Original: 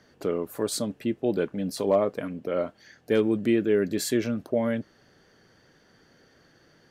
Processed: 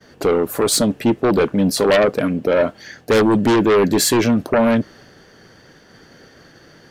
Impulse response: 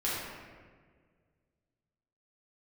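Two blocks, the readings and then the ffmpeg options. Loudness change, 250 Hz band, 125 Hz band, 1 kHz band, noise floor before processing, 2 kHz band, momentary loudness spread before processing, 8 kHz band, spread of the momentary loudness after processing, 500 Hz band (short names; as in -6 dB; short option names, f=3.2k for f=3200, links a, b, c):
+10.5 dB, +10.0 dB, +11.5 dB, +15.0 dB, -61 dBFS, +13.5 dB, 7 LU, +14.0 dB, 5 LU, +9.5 dB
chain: -af "aeval=exprs='0.237*(cos(1*acos(clip(val(0)/0.237,-1,1)))-cos(1*PI/2))+0.119*(cos(5*acos(clip(val(0)/0.237,-1,1)))-cos(5*PI/2))':c=same,agate=range=-33dB:threshold=-45dB:ratio=3:detection=peak,volume=4dB"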